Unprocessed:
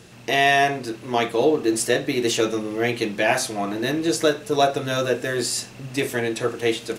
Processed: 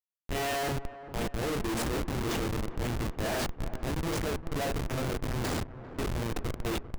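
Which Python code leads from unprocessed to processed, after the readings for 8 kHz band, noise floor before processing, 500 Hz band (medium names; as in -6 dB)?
-12.0 dB, -43 dBFS, -13.5 dB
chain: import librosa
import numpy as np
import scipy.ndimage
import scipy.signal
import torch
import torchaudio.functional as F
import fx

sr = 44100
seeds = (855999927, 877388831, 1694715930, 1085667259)

y = fx.transient(x, sr, attack_db=-6, sustain_db=6)
y = fx.hum_notches(y, sr, base_hz=50, count=5)
y = fx.schmitt(y, sr, flips_db=-19.5)
y = fx.echo_wet_lowpass(y, sr, ms=398, feedback_pct=58, hz=1600.0, wet_db=-13.5)
y = y * librosa.db_to_amplitude(-7.5)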